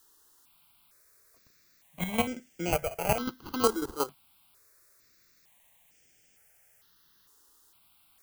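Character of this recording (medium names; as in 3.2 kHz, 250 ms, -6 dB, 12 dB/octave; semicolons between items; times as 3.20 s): aliases and images of a low sample rate 1.8 kHz, jitter 0%; chopped level 5.5 Hz, depth 65%, duty 20%; a quantiser's noise floor 12-bit, dither triangular; notches that jump at a steady rate 2.2 Hz 630–4000 Hz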